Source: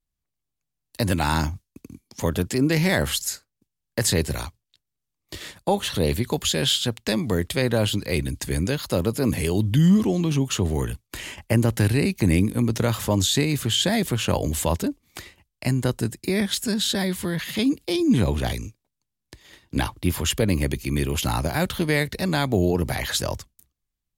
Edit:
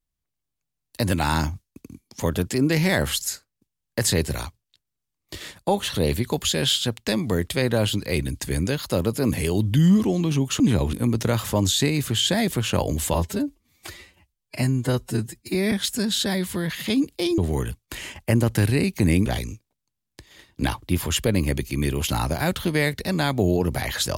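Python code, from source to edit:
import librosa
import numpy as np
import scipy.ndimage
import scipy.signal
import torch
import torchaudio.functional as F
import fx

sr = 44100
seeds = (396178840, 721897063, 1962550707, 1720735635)

y = fx.edit(x, sr, fx.swap(start_s=10.6, length_s=1.88, other_s=18.07, other_length_s=0.33),
    fx.stretch_span(start_s=14.69, length_s=1.72, factor=1.5), tone=tone)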